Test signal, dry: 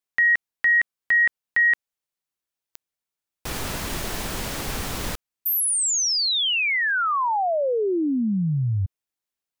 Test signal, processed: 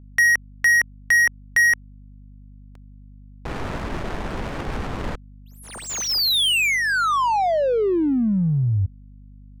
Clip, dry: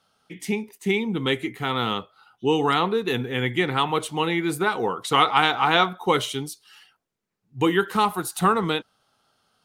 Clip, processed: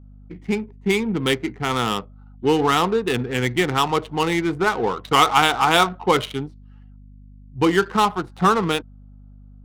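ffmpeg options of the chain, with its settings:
-af "adynamicequalizer=threshold=0.0224:dfrequency=1900:dqfactor=3.7:tfrequency=1900:tqfactor=3.7:attack=5:release=100:ratio=0.375:range=3:mode=cutabove:tftype=bell,adynamicsmooth=sensitivity=3.5:basefreq=600,aeval=exprs='val(0)+0.00501*(sin(2*PI*50*n/s)+sin(2*PI*2*50*n/s)/2+sin(2*PI*3*50*n/s)/3+sin(2*PI*4*50*n/s)/4+sin(2*PI*5*50*n/s)/5)':c=same,volume=3dB"

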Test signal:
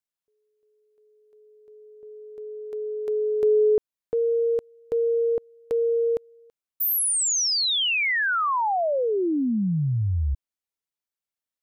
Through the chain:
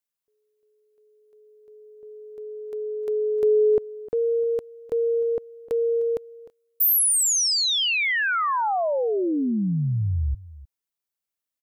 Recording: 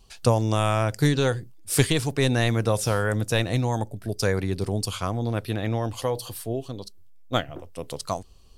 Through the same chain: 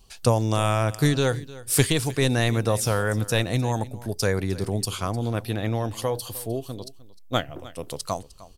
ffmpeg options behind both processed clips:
-af "highshelf=f=9.2k:g=6,aecho=1:1:305:0.119"

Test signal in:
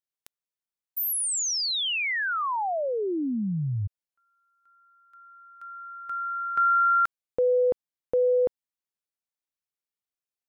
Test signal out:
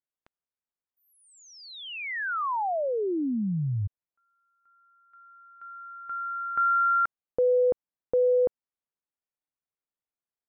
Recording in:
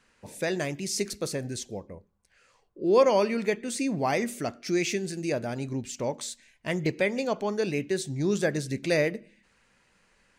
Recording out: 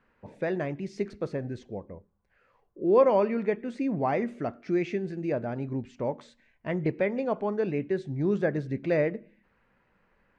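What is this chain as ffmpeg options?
-af "lowpass=1.6k"

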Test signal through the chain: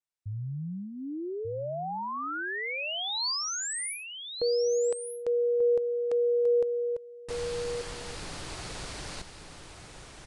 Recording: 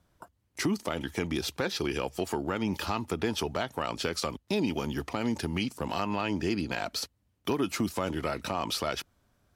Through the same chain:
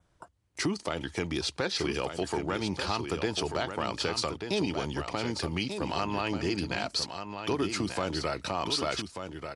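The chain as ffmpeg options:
-filter_complex "[0:a]equalizer=f=230:t=o:w=0.31:g=-7,asplit=2[a][b];[b]aecho=0:1:1188:0.422[c];[a][c]amix=inputs=2:normalize=0,adynamicequalizer=threshold=0.002:dfrequency=4500:dqfactor=3.7:tfrequency=4500:tqfactor=3.7:attack=5:release=100:ratio=0.375:range=2.5:mode=boostabove:tftype=bell,aresample=22050,aresample=44100"

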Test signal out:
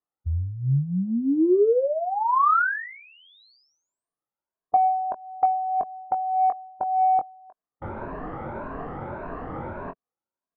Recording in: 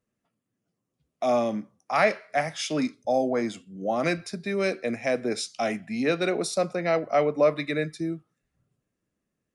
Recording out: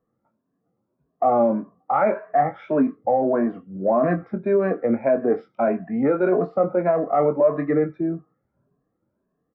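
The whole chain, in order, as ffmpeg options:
-filter_complex "[0:a]afftfilt=real='re*pow(10,12/40*sin(2*PI*(1.5*log(max(b,1)*sr/1024/100)/log(2)-(1.7)*(pts-256)/sr)))':imag='im*pow(10,12/40*sin(2*PI*(1.5*log(max(b,1)*sr/1024/100)/log(2)-(1.7)*(pts-256)/sr)))':win_size=1024:overlap=0.75,lowpass=f=1.3k:w=0.5412,lowpass=f=1.3k:w=1.3066,alimiter=limit=-19dB:level=0:latency=1:release=21,acontrast=65,lowshelf=f=130:g=-9,asplit=2[a][b];[b]adelay=22,volume=-8dB[c];[a][c]amix=inputs=2:normalize=0,volume=1.5dB"

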